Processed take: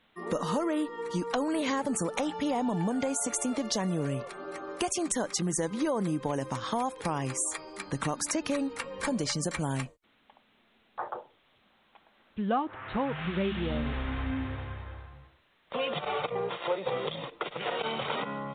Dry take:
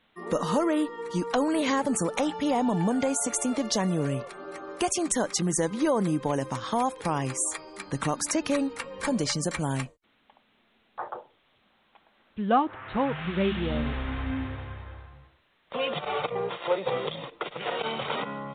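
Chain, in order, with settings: compressor 2:1, threshold -29 dBFS, peak gain reduction 7 dB

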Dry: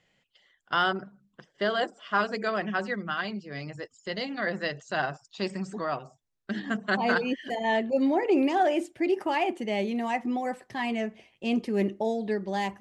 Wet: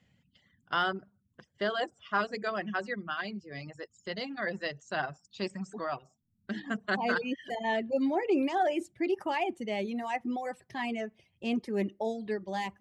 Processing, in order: band noise 74–230 Hz -65 dBFS; reverb removal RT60 0.84 s; gain -3.5 dB

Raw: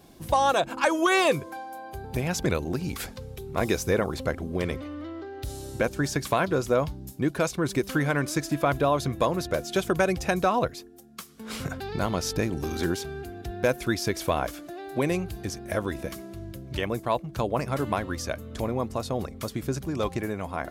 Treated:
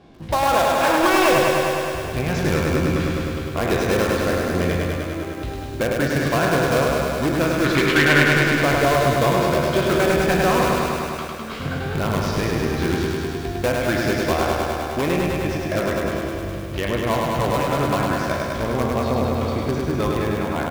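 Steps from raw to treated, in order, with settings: spectral trails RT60 0.40 s; LPF 3200 Hz 12 dB/oct; in parallel at -7 dB: wrapped overs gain 17.5 dB; 7.64–8.28 on the sum: bell 2500 Hz +11 dB 2.1 oct; on a send: feedback echo 0.193 s, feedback 56%, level -8.5 dB; on the sum: lo-fi delay 0.103 s, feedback 80%, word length 8-bit, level -3 dB

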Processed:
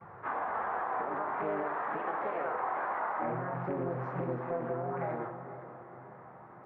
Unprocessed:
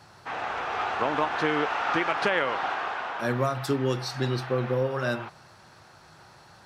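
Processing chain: HPF 41 Hz 12 dB/oct; gate with hold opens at -46 dBFS; LPF 1000 Hz 24 dB/oct; tilt +2 dB/oct; vocal rider within 4 dB 0.5 s; limiter -24.5 dBFS, peak gain reduction 8 dB; compressor 5:1, threshold -35 dBFS, peak gain reduction 6 dB; flange 0.4 Hz, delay 1.8 ms, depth 6.2 ms, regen -39%; harmoniser +5 st 0 dB; diffused feedback echo 0.481 s, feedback 52%, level -12 dB; on a send at -4.5 dB: reverb RT60 0.95 s, pre-delay 22 ms; on the sum: Doppler distortion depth 0.3 ms; gain +3.5 dB

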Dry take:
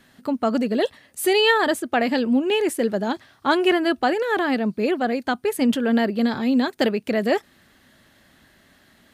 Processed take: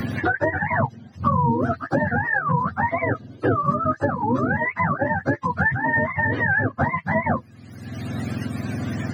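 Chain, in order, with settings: spectrum mirrored in octaves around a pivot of 650 Hz; three-band squash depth 100%; gain +1 dB

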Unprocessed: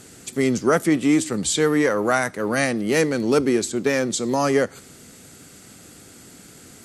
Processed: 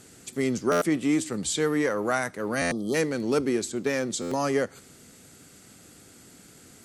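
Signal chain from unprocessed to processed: spectral delete 2.64–2.94, 1300–3100 Hz; stuck buffer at 0.71/2.61/4.21, samples 512, times 8; gain -6 dB

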